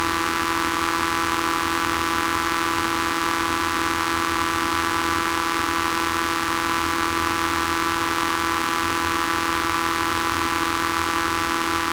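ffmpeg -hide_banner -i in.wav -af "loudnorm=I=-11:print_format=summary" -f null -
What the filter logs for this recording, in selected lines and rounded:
Input Integrated:    -21.9 LUFS
Input True Peak:      -4.2 dBTP
Input LRA:             0.1 LU
Input Threshold:     -31.9 LUFS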